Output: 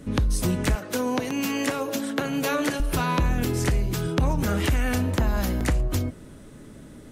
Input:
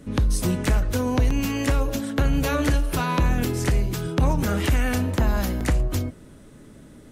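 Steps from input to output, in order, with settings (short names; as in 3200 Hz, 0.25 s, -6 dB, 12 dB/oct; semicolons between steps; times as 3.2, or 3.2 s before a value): 0.75–2.8 Bessel high-pass 240 Hz, order 4; compressor 2:1, threshold -24 dBFS, peak gain reduction 5 dB; gain +2 dB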